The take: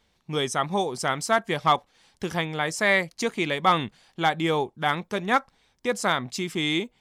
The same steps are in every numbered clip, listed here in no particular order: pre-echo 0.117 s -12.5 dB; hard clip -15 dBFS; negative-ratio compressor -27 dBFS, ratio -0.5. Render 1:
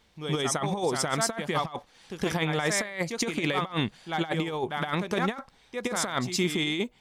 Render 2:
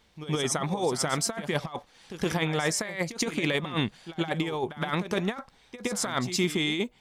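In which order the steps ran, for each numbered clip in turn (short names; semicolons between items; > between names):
pre-echo > negative-ratio compressor > hard clip; negative-ratio compressor > pre-echo > hard clip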